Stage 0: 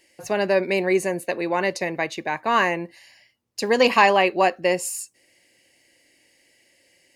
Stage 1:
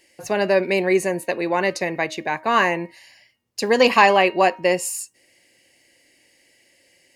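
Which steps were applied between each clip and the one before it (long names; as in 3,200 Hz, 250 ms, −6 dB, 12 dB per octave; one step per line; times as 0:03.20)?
hum removal 313.1 Hz, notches 10
level +2 dB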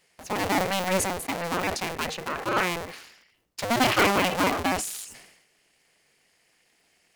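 sub-harmonics by changed cycles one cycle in 2, inverted
level that may fall only so fast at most 63 dB per second
level −7.5 dB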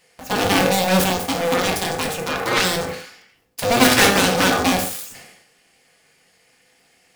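phase distortion by the signal itself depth 0.41 ms
on a send at −1.5 dB: convolution reverb, pre-delay 3 ms
on the sum: level +6 dB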